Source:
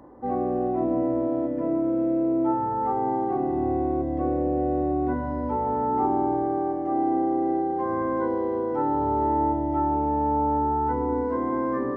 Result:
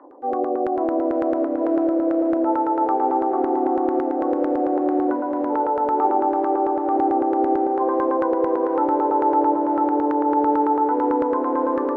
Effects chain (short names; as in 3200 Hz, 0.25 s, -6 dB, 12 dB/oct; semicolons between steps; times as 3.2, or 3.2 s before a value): Chebyshev high-pass 270 Hz, order 5; LFO low-pass saw down 9 Hz 480–1500 Hz; diffused feedback echo 0.531 s, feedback 62%, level -8.5 dB; gain +1 dB